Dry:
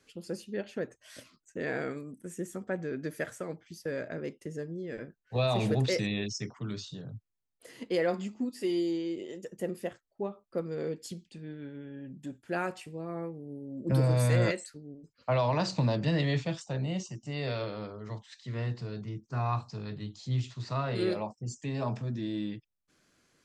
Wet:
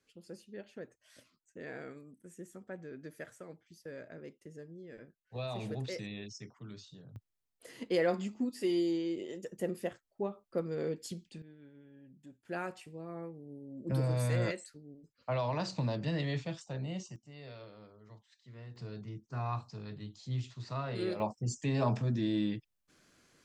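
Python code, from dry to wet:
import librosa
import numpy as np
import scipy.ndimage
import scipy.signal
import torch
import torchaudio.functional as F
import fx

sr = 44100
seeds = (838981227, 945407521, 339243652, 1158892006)

y = fx.gain(x, sr, db=fx.steps((0.0, -11.0), (7.16, -1.0), (11.42, -13.5), (12.45, -6.0), (17.16, -15.5), (18.76, -5.5), (21.2, 2.5)))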